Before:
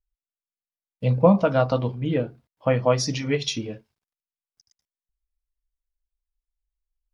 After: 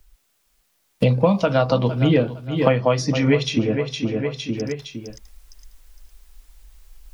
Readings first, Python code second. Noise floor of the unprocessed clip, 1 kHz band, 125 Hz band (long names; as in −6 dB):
below −85 dBFS, +2.0 dB, +4.5 dB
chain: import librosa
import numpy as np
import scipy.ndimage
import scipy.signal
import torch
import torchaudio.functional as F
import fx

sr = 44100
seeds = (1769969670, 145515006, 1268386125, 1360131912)

p1 = fx.rider(x, sr, range_db=10, speed_s=0.5)
p2 = p1 + fx.echo_feedback(p1, sr, ms=460, feedback_pct=24, wet_db=-14.5, dry=0)
p3 = fx.band_squash(p2, sr, depth_pct=100)
y = F.gain(torch.from_numpy(p3), 3.5).numpy()